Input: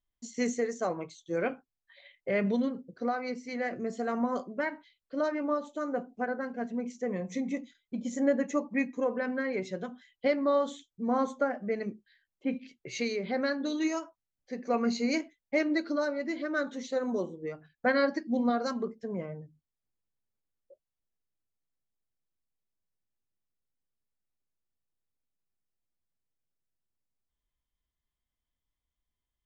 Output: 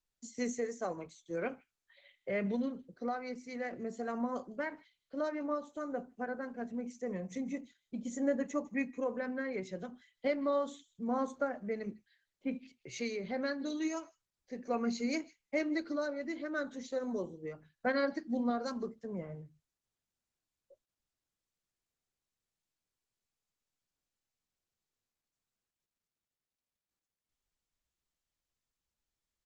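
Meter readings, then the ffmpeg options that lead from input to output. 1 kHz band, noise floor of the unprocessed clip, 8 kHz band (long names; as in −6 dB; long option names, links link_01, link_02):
−6.0 dB, below −85 dBFS, can't be measured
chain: -filter_complex "[0:a]equalizer=frequency=6800:width_type=o:width=0.52:gain=4.5,acrossover=split=130|500|1800[link_01][link_02][link_03][link_04];[link_01]dynaudnorm=framelen=390:gausssize=31:maxgain=5.5dB[link_05];[link_04]aecho=1:1:155:0.0944[link_06];[link_05][link_02][link_03][link_06]amix=inputs=4:normalize=0,volume=-5.5dB" -ar 48000 -c:a libopus -b:a 16k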